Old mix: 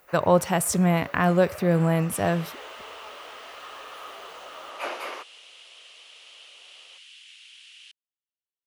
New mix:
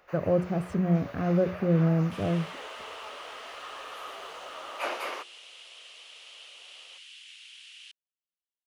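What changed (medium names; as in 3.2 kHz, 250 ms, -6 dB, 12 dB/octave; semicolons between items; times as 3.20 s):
speech: add boxcar filter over 46 samples; master: add hum notches 60/120/180/240/300/360/420 Hz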